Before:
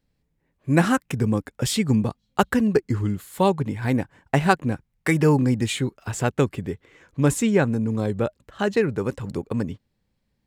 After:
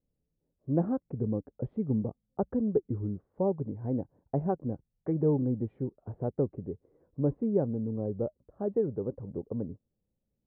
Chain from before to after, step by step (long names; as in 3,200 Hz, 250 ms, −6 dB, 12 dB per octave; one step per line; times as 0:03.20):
transistor ladder low-pass 720 Hz, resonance 30%
level −3 dB